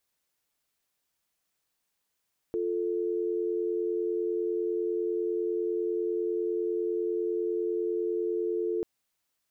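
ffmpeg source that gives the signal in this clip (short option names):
-f lavfi -i "aevalsrc='0.0335*(sin(2*PI*350*t)+sin(2*PI*440*t))':d=6.29:s=44100"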